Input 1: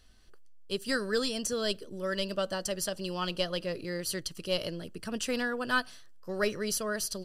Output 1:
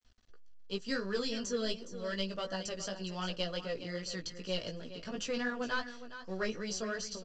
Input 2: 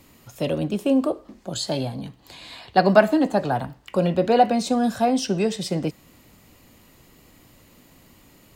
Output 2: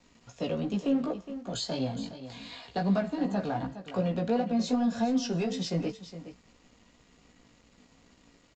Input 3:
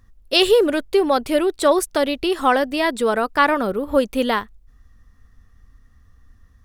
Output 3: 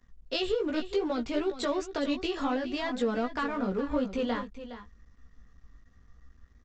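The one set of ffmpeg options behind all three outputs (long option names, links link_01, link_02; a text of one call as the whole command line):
ffmpeg -i in.wav -filter_complex "[0:a]aecho=1:1:4.2:0.34,acrossover=split=260[link_01][link_02];[link_02]acompressor=threshold=-24dB:ratio=5[link_03];[link_01][link_03]amix=inputs=2:normalize=0,asplit=2[link_04][link_05];[link_05]asoftclip=type=hard:threshold=-28.5dB,volume=-6dB[link_06];[link_04][link_06]amix=inputs=2:normalize=0,flanger=delay=15.5:depth=2.5:speed=2.7,aresample=16000,aeval=exprs='sgn(val(0))*max(abs(val(0))-0.00141,0)':channel_layout=same,aresample=44100,aecho=1:1:414:0.237,volume=-4.5dB" out.wav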